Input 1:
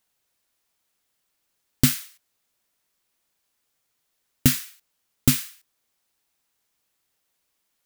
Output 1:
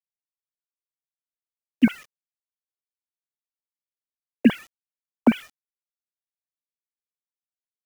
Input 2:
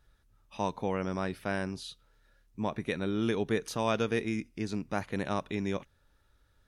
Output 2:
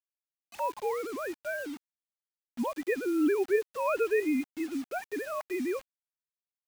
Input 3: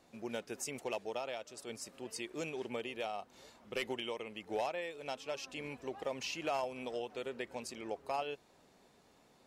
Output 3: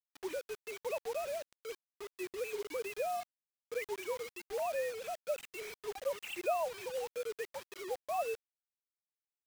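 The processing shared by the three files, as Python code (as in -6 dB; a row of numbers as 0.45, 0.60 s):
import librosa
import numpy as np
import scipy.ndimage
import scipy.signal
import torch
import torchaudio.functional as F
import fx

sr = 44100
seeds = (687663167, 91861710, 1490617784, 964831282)

y = fx.sine_speech(x, sr)
y = fx.quant_dither(y, sr, seeds[0], bits=8, dither='none')
y = y * 10.0 ** (1.5 / 20.0)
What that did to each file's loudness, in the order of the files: +0.5, +1.5, +1.5 LU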